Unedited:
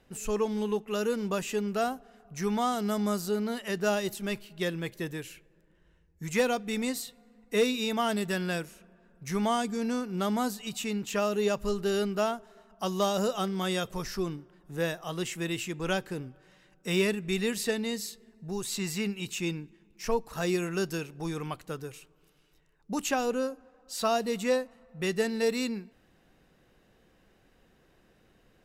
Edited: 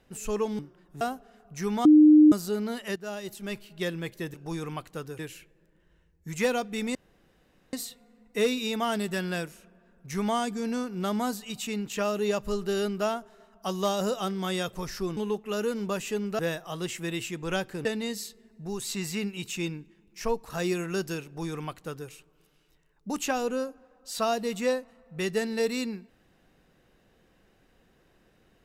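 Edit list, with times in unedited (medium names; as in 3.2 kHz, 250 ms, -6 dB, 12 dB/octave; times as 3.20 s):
0.59–1.81 s: swap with 14.34–14.76 s
2.65–3.12 s: bleep 304 Hz -11.5 dBFS
3.76–4.52 s: fade in, from -14 dB
6.90 s: insert room tone 0.78 s
16.22–17.68 s: delete
21.08–21.93 s: copy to 5.14 s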